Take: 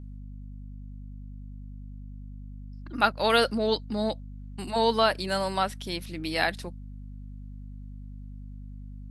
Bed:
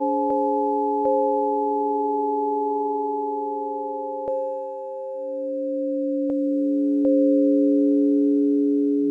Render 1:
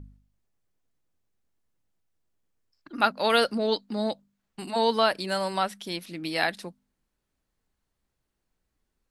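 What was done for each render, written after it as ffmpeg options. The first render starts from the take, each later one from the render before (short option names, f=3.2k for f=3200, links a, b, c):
-af "bandreject=f=50:t=h:w=4,bandreject=f=100:t=h:w=4,bandreject=f=150:t=h:w=4,bandreject=f=200:t=h:w=4,bandreject=f=250:t=h:w=4"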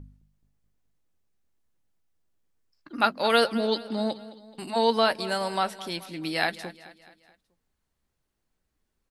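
-filter_complex "[0:a]asplit=2[a][b];[b]adelay=13,volume=-13dB[c];[a][c]amix=inputs=2:normalize=0,aecho=1:1:214|428|642|856:0.141|0.0706|0.0353|0.0177"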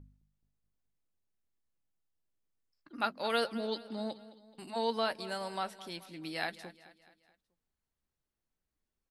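-af "volume=-10dB"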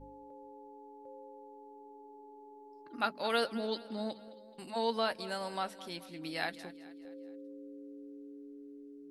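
-filter_complex "[1:a]volume=-30.5dB[a];[0:a][a]amix=inputs=2:normalize=0"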